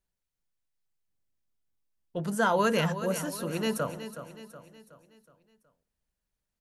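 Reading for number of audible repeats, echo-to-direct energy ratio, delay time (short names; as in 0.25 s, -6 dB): 4, -10.5 dB, 0.37 s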